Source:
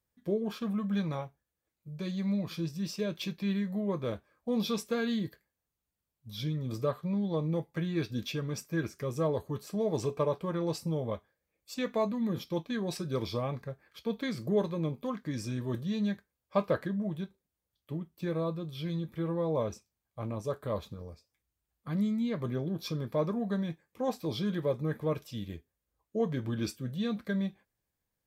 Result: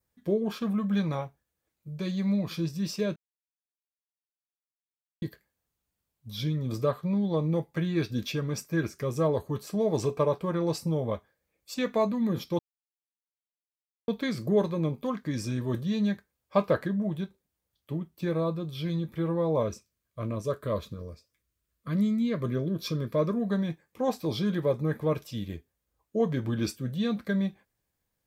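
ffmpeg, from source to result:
-filter_complex "[0:a]asettb=1/sr,asplit=3[a][b][c];[a]atrim=end=19.634[d];[b]atrim=start=19.63:end=23.5,asetpts=PTS-STARTPTS,afade=t=in:d=0.004:c=qsin,afade=t=out:st=3.866:d=0.004:c=qsin,asuperstop=centerf=810:order=4:qfactor=2.9[e];[c]atrim=start=23.496[f];[d][e]acrossfade=d=0.004:c1=hsin:c2=qsin[g];[g][f]acrossfade=d=0.004:c1=qsin:c2=hsin,asplit=5[h][i][j][k][l];[h]atrim=end=3.16,asetpts=PTS-STARTPTS,afade=t=out:st=3.156:d=0.004:c=hsin[m];[i]atrim=start=3.16:end=5.22,asetpts=PTS-STARTPTS,volume=0[n];[j]atrim=start=5.22:end=12.59,asetpts=PTS-STARTPTS,afade=t=in:d=0.004:c=hsin,afade=t=out:st=7.366:d=0.004:c=hsin[o];[k]atrim=start=12.59:end=14.08,asetpts=PTS-STARTPTS,volume=0[p];[l]atrim=start=14.08,asetpts=PTS-STARTPTS,afade=t=in:d=0.004:c=hsin[q];[m][n][o][p][q]concat=n=5:v=0:a=1,adynamicequalizer=threshold=0.00126:dfrequency=3200:dqfactor=2.8:tfrequency=3200:tqfactor=2.8:attack=5:release=100:ratio=0.375:range=1.5:mode=cutabove:tftype=bell,volume=4dB"

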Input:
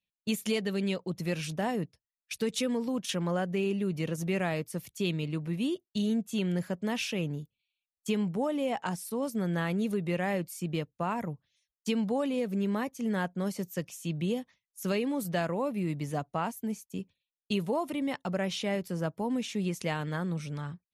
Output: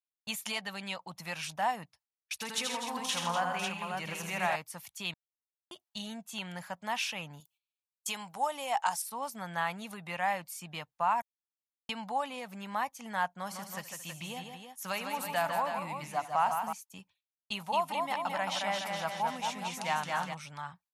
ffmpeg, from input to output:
-filter_complex "[0:a]asettb=1/sr,asplit=3[a][b][c];[a]atrim=end=2.324[d];[b]atrim=start=2.32:end=4.56,asetpts=PTS-STARTPTS,afade=t=in:d=0.004:c=qsin,afade=t=out:st=2.236:d=0.004:c=qsin,aecho=1:1:82|129|160|248|277|548:0.631|0.335|0.316|0.316|0.15|0.531,atrim=end_sample=98784[e];[c]atrim=start=4.556[f];[d][e]acrossfade=d=0.004:c1=hsin:c2=qsin[g];[g][f]acrossfade=d=0.004:c1=qsin:c2=hsin,asettb=1/sr,asplit=3[h][i][j];[h]atrim=end=7.404[k];[i]atrim=start=7.4:end=9.02,asetpts=PTS-STARTPTS,afade=t=in:d=0.004:c=qsin,afade=t=out:st=1.616:d=0.004:c=qsin,bass=f=250:g=-8,treble=f=4k:g=9[l];[j]atrim=start=9.016[m];[k][l]acrossfade=d=0.004:c1=hsin:c2=qsin[n];[n][m]acrossfade=d=0.004:c1=qsin:c2=hsin,asettb=1/sr,asplit=3[o][p][q];[o]atrim=end=13.314[r];[p]atrim=start=13.31:end=16.73,asetpts=PTS-STARTPTS,afade=t=in:d=0.004:c=qsin,afade=t=out:st=3.416:d=0.004:c=qsin,aecho=1:1:75|154|223|323:0.133|0.501|0.119|0.398,atrim=end_sample=150822[s];[q]atrim=start=16.726[t];[r][s]acrossfade=d=0.004:c1=hsin:c2=qsin[u];[u][t]acrossfade=d=0.004:c1=qsin:c2=hsin,asplit=3[v][w][x];[v]afade=t=out:st=17.57:d=0.02[y];[w]aecho=1:1:220|418|596.2|756.6|900.9:0.631|0.398|0.251|0.158|0.1,afade=t=in:st=17.57:d=0.02,afade=t=out:st=20.33:d=0.02[z];[x]afade=t=in:st=20.33:d=0.02[aa];[y][z][aa]amix=inputs=3:normalize=0,asplit=5[ab][ac][ad][ae][af];[ab]atrim=end=5.14,asetpts=PTS-STARTPTS,afade=t=out:st=5.136:d=0.004:c=hsin[ag];[ac]atrim=start=5.14:end=5.71,asetpts=PTS-STARTPTS,volume=0[ah];[ad]atrim=start=5.71:end=11.22,asetpts=PTS-STARTPTS,afade=t=in:d=0.004:c=hsin,afade=t=out:st=5.506:d=0.004:c=hsin[ai];[ae]atrim=start=11.22:end=11.89,asetpts=PTS-STARTPTS,volume=0[aj];[af]atrim=start=11.89,asetpts=PTS-STARTPTS,afade=t=in:d=0.004:c=hsin[ak];[ag][ah][ai][aj][ak]concat=n=5:v=0:a=1,agate=range=-17dB:threshold=-58dB:ratio=16:detection=peak,lowshelf=f=580:t=q:w=3:g=-12.5"

